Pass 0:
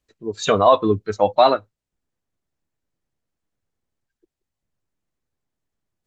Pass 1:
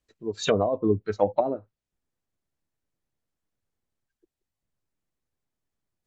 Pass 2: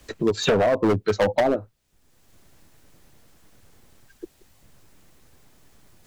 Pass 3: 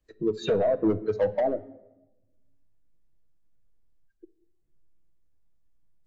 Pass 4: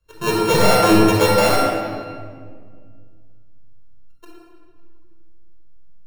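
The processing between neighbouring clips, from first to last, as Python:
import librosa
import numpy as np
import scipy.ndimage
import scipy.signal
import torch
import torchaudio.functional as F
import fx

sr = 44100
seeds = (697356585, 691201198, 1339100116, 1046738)

y1 = fx.env_lowpass_down(x, sr, base_hz=390.0, full_db=-11.0)
y1 = fx.dynamic_eq(y1, sr, hz=1200.0, q=2.2, threshold_db=-36.0, ratio=4.0, max_db=-6)
y1 = y1 * librosa.db_to_amplitude(-3.5)
y2 = np.clip(y1, -10.0 ** (-24.5 / 20.0), 10.0 ** (-24.5 / 20.0))
y2 = fx.band_squash(y2, sr, depth_pct=70)
y2 = y2 * librosa.db_to_amplitude(9.0)
y3 = fx.room_shoebox(y2, sr, seeds[0], volume_m3=1600.0, walls='mixed', distance_m=0.63)
y3 = fx.spectral_expand(y3, sr, expansion=1.5)
y3 = y3 * librosa.db_to_amplitude(-7.0)
y4 = np.r_[np.sort(y3[:len(y3) // 32 * 32].reshape(-1, 32), axis=1).ravel(), y3[len(y3) // 32 * 32:]]
y4 = fx.room_shoebox(y4, sr, seeds[1], volume_m3=2900.0, walls='mixed', distance_m=5.3)
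y4 = y4 * librosa.db_to_amplitude(2.0)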